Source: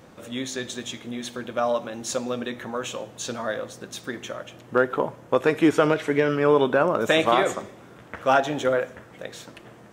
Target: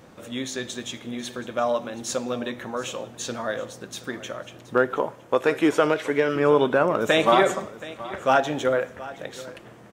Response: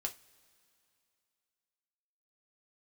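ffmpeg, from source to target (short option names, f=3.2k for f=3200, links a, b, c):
-filter_complex "[0:a]asettb=1/sr,asplit=3[a][b][c];[a]atrim=end=4.974[d];[b]atrim=start=4.97:end=6.36,asetpts=PTS-STARTPTS,afade=t=in:d=0.004:c=qsin,afade=t=out:st=1.386:d=0.004:c=qsin,bass=f=250:g=-7,treble=f=4k:g=1[e];[c]atrim=start=6.356[f];[d][e]acrossfade=d=0.004:c1=hsin:c2=qsin[g];[g][f]acrossfade=d=0.004:c1=qsin:c2=hsin,asettb=1/sr,asplit=3[h][i][j];[h]atrim=end=7.234[k];[i]atrim=start=7.23:end=7.65,asetpts=PTS-STARTPTS,afade=t=in:d=0.004:c=qsin,afade=t=out:st=0.416:d=0.004:c=qsin,aecho=1:1:5.2:0.66,atrim=end_sample=18522[l];[j]atrim=start=7.646[m];[k][l]acrossfade=d=0.004:c1=hsin:c2=qsin[n];[n][m]acrossfade=d=0.004:c1=qsin:c2=hsin,aecho=1:1:724:0.133"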